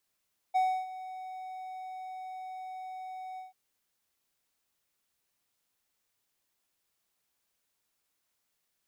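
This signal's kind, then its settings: ADSR triangle 748 Hz, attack 20 ms, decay 0.3 s, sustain -16.5 dB, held 2.84 s, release 0.148 s -20.5 dBFS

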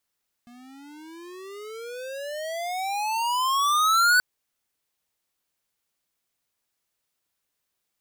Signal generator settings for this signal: gliding synth tone square, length 3.73 s, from 237 Hz, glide +32 st, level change +30.5 dB, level -17.5 dB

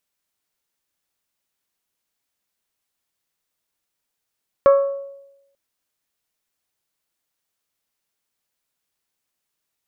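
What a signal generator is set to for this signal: glass hit bell, lowest mode 555 Hz, decay 0.92 s, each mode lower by 9 dB, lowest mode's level -7 dB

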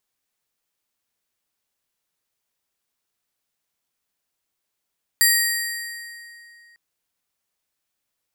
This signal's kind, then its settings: metal hit plate, lowest mode 1880 Hz, modes 6, decay 2.83 s, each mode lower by 0.5 dB, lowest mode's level -18 dB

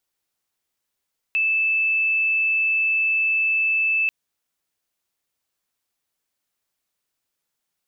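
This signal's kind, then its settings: tone sine 2630 Hz -17.5 dBFS 2.74 s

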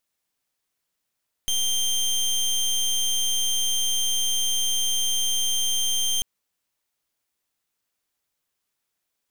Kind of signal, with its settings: pulse 3160 Hz, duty 22% -23 dBFS 4.74 s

